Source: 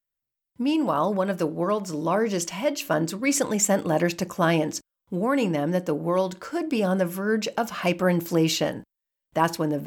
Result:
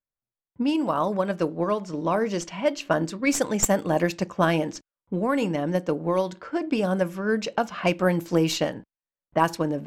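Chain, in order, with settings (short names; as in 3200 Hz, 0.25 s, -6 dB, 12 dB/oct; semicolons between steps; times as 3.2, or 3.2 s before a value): tracing distortion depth 0.027 ms; low-pass opened by the level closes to 1300 Hz, open at -18 dBFS; transient shaper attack +4 dB, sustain -1 dB; gain -1.5 dB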